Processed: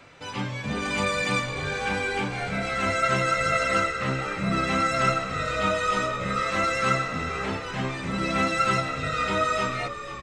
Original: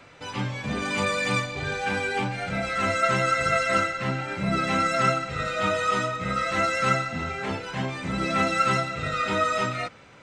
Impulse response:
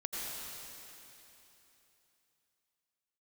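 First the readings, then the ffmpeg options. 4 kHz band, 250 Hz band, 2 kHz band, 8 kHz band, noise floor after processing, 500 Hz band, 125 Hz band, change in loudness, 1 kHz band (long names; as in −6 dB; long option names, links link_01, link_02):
+0.5 dB, 0.0 dB, 0.0 dB, +0.5 dB, −36 dBFS, −0.5 dB, −0.5 dB, 0.0 dB, −0.5 dB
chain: -filter_complex "[0:a]bandreject=frequency=60.79:width_type=h:width=4,bandreject=frequency=121.58:width_type=h:width=4,bandreject=frequency=182.37:width_type=h:width=4,bandreject=frequency=243.16:width_type=h:width=4,bandreject=frequency=303.95:width_type=h:width=4,bandreject=frequency=364.74:width_type=h:width=4,bandreject=frequency=425.53:width_type=h:width=4,bandreject=frequency=486.32:width_type=h:width=4,bandreject=frequency=547.11:width_type=h:width=4,bandreject=frequency=607.9:width_type=h:width=4,bandreject=frequency=668.69:width_type=h:width=4,bandreject=frequency=729.48:width_type=h:width=4,bandreject=frequency=790.27:width_type=h:width=4,bandreject=frequency=851.06:width_type=h:width=4,bandreject=frequency=911.85:width_type=h:width=4,bandreject=frequency=972.64:width_type=h:width=4,bandreject=frequency=1033.43:width_type=h:width=4,bandreject=frequency=1094.22:width_type=h:width=4,bandreject=frequency=1155.01:width_type=h:width=4,bandreject=frequency=1215.8:width_type=h:width=4,bandreject=frequency=1276.59:width_type=h:width=4,bandreject=frequency=1337.38:width_type=h:width=4,bandreject=frequency=1398.17:width_type=h:width=4,bandreject=frequency=1458.96:width_type=h:width=4,bandreject=frequency=1519.75:width_type=h:width=4,bandreject=frequency=1580.54:width_type=h:width=4,bandreject=frequency=1641.33:width_type=h:width=4,bandreject=frequency=1702.12:width_type=h:width=4,bandreject=frequency=1762.91:width_type=h:width=4,bandreject=frequency=1823.7:width_type=h:width=4,bandreject=frequency=1884.49:width_type=h:width=4,bandreject=frequency=1945.28:width_type=h:width=4,bandreject=frequency=2006.07:width_type=h:width=4,bandreject=frequency=2066.86:width_type=h:width=4,asplit=7[link_01][link_02][link_03][link_04][link_05][link_06][link_07];[link_02]adelay=493,afreqshift=-65,volume=-12dB[link_08];[link_03]adelay=986,afreqshift=-130,volume=-17.4dB[link_09];[link_04]adelay=1479,afreqshift=-195,volume=-22.7dB[link_10];[link_05]adelay=1972,afreqshift=-260,volume=-28.1dB[link_11];[link_06]adelay=2465,afreqshift=-325,volume=-33.4dB[link_12];[link_07]adelay=2958,afreqshift=-390,volume=-38.8dB[link_13];[link_01][link_08][link_09][link_10][link_11][link_12][link_13]amix=inputs=7:normalize=0"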